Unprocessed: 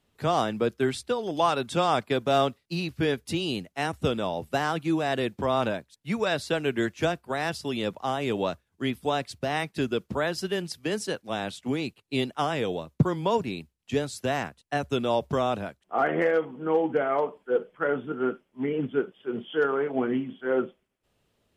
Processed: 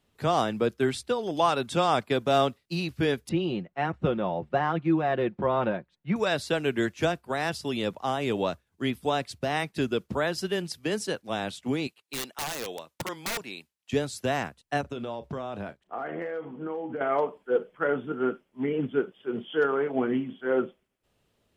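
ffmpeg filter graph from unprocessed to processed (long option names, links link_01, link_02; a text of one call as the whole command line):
ffmpeg -i in.wav -filter_complex "[0:a]asettb=1/sr,asplit=3[link_01][link_02][link_03];[link_01]atrim=end=3.294[link_04];[link_02]atrim=start=3.29:end=6.16,asetpts=PTS-STARTPTS,afade=type=in:duration=0.004:curve=qsin,afade=type=out:start_time=2.866:duration=0.004:curve=qsin,lowpass=1900,aecho=1:1:5.6:0.48,atrim=end_sample=126567[link_05];[link_03]atrim=start=6.156[link_06];[link_04][link_05]acrossfade=duration=0.004:curve1=hsin:curve2=qsin[link_07];[link_07][link_06]acrossfade=duration=0.004:curve1=qsin:curve2=hsin,asettb=1/sr,asplit=3[link_08][link_09][link_10];[link_08]atrim=end=11.874[link_11];[link_09]atrim=start=11.87:end=13.93,asetpts=PTS-STARTPTS,afade=type=in:duration=0.004:curve=qsin,afade=type=out:start_time=2.056:duration=0.004:curve=qsin,highpass=frequency=960:poles=1,aeval=exprs='(mod(18.8*val(0)+1,2)-1)/18.8':channel_layout=same[link_12];[link_10]atrim=start=13.926[link_13];[link_11][link_12]acrossfade=duration=0.004:curve1=hsin:curve2=qsin[link_14];[link_14][link_13]acrossfade=duration=0.004:curve1=qsin:curve2=hsin,asettb=1/sr,asplit=3[link_15][link_16][link_17];[link_15]atrim=end=14.814[link_18];[link_16]atrim=start=14.81:end=17.01,asetpts=PTS-STARTPTS,afade=type=in:duration=0.004:curve=qsin,afade=type=out:start_time=2.196:duration=0.004:curve=qsin,highshelf=frequency=5200:gain=-11,acompressor=threshold=-31dB:ratio=5:attack=3.2:release=140:knee=1:detection=peak,asplit=2[link_19][link_20];[link_20]adelay=35,volume=-14dB[link_21];[link_19][link_21]amix=inputs=2:normalize=0,atrim=end_sample=97020[link_22];[link_17]atrim=start=17.006[link_23];[link_18][link_22]acrossfade=duration=0.004:curve1=hsin:curve2=qsin[link_24];[link_24][link_23]acrossfade=duration=0.004:curve1=qsin:curve2=hsin" out.wav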